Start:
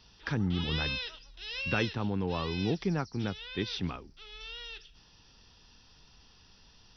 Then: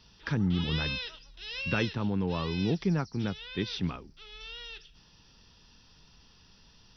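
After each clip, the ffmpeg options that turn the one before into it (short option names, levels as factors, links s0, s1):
-af "equalizer=f=170:t=o:w=0.89:g=4,bandreject=f=760:w=16"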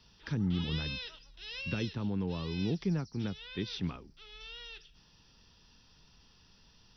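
-filter_complex "[0:a]acrossover=split=440|3000[s0][s1][s2];[s1]acompressor=threshold=0.00891:ratio=6[s3];[s0][s3][s2]amix=inputs=3:normalize=0,volume=0.668"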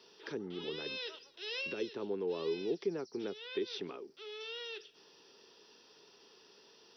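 -af "alimiter=level_in=2.37:limit=0.0631:level=0:latency=1:release=338,volume=0.422,highpass=f=400:t=q:w=4.9,volume=1.26"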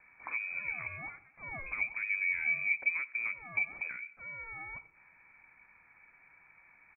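-af "aecho=1:1:91|182|273:0.0944|0.0368|0.0144,lowpass=f=2300:t=q:w=0.5098,lowpass=f=2300:t=q:w=0.6013,lowpass=f=2300:t=q:w=0.9,lowpass=f=2300:t=q:w=2.563,afreqshift=-2700,volume=1.5"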